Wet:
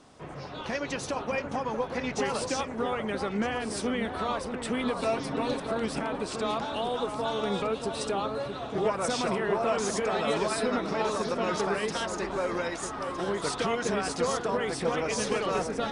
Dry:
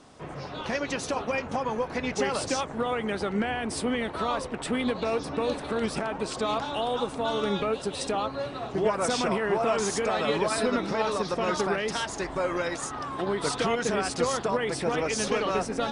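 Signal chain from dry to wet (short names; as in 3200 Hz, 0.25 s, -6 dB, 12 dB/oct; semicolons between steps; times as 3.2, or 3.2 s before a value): 5.02–5.6 comb 7.5 ms, depth 87%; echo with dull and thin repeats by turns 0.631 s, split 1600 Hz, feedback 55%, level -6.5 dB; gain -2.5 dB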